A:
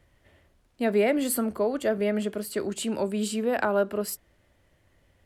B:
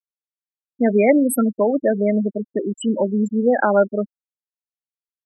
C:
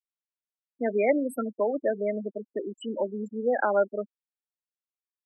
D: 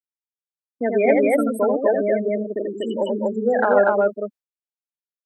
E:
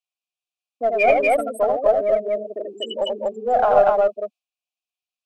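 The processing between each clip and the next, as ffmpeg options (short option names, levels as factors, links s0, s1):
-af "afftfilt=real='re*gte(hypot(re,im),0.1)':imag='im*gte(hypot(re,im),0.1)':win_size=1024:overlap=0.75,aecho=1:1:3.7:0.32,volume=2.66"
-filter_complex "[0:a]acrossover=split=290 4800:gain=0.2 1 0.158[s0][s1][s2];[s0][s1][s2]amix=inputs=3:normalize=0,volume=0.447"
-af "agate=range=0.0224:threshold=0.00794:ratio=3:detection=peak,acontrast=28,aecho=1:1:84.55|242:0.631|0.891"
-filter_complex "[0:a]asplit=3[s0][s1][s2];[s0]bandpass=f=730:t=q:w=8,volume=1[s3];[s1]bandpass=f=1090:t=q:w=8,volume=0.501[s4];[s2]bandpass=f=2440:t=q:w=8,volume=0.355[s5];[s3][s4][s5]amix=inputs=3:normalize=0,aexciter=amount=5.9:drive=6.6:freq=2400,asplit=2[s6][s7];[s7]aeval=exprs='clip(val(0),-1,0.0224)':c=same,volume=0.316[s8];[s6][s8]amix=inputs=2:normalize=0,volume=2.66"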